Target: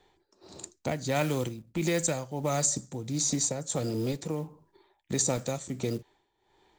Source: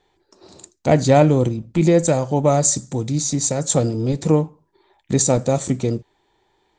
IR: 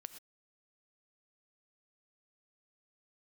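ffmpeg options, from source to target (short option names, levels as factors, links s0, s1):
-filter_complex "[0:a]acrusher=bits=8:mode=log:mix=0:aa=0.000001,tremolo=f=1.5:d=0.79,acrossover=split=270|1300[s0][s1][s2];[s0]acompressor=threshold=0.0178:ratio=4[s3];[s1]acompressor=threshold=0.0251:ratio=4[s4];[s2]acompressor=threshold=0.0501:ratio=4[s5];[s3][s4][s5]amix=inputs=3:normalize=0"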